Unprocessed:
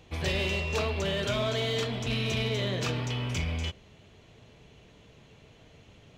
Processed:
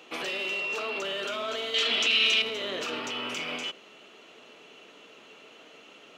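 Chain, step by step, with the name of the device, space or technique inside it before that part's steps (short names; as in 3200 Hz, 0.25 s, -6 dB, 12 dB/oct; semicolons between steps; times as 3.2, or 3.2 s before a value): laptop speaker (HPF 270 Hz 24 dB/oct; bell 1300 Hz +9.5 dB 0.29 oct; bell 2800 Hz +8 dB 0.24 oct; limiter -29.5 dBFS, peak gain reduction 12 dB); 1.74–2.42 weighting filter D; gain +5 dB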